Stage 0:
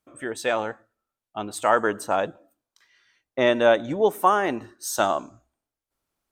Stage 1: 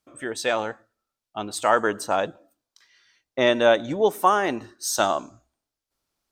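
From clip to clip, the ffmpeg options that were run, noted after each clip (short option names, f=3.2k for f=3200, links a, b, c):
-af "equalizer=f=4.9k:t=o:w=1.1:g=6.5"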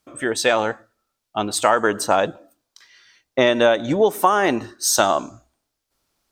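-af "acompressor=threshold=-20dB:ratio=6,volume=8dB"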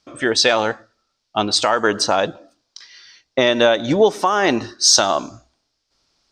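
-af "alimiter=limit=-7.5dB:level=0:latency=1:release=352,lowpass=f=5.1k:t=q:w=2.8,volume=3.5dB"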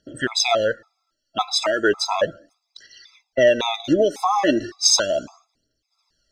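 -af "aphaser=in_gain=1:out_gain=1:delay=3.9:decay=0.59:speed=0.35:type=triangular,afftfilt=real='re*gt(sin(2*PI*1.8*pts/sr)*(1-2*mod(floor(b*sr/1024/670),2)),0)':imag='im*gt(sin(2*PI*1.8*pts/sr)*(1-2*mod(floor(b*sr/1024/670),2)),0)':win_size=1024:overlap=0.75,volume=-2.5dB"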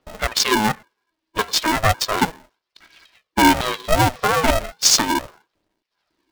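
-filter_complex "[0:a]acrossover=split=3800[a][b];[b]acrusher=bits=3:mix=0:aa=0.5[c];[a][c]amix=inputs=2:normalize=0,aeval=exprs='val(0)*sgn(sin(2*PI*320*n/s))':c=same,volume=1.5dB"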